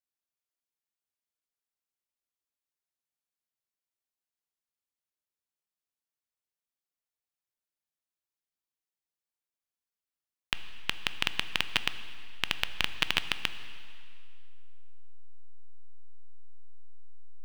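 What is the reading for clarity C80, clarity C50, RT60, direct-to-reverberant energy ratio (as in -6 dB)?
13.0 dB, 12.5 dB, 2.4 s, 11.0 dB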